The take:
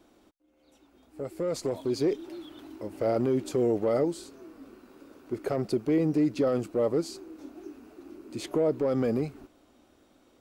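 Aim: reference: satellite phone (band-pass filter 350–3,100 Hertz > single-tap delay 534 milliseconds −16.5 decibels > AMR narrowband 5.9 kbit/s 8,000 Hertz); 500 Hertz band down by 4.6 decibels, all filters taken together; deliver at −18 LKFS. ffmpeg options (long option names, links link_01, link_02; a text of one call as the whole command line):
ffmpeg -i in.wav -af "highpass=350,lowpass=3100,equalizer=frequency=500:width_type=o:gain=-4,aecho=1:1:534:0.15,volume=16.5dB" -ar 8000 -c:a libopencore_amrnb -b:a 5900 out.amr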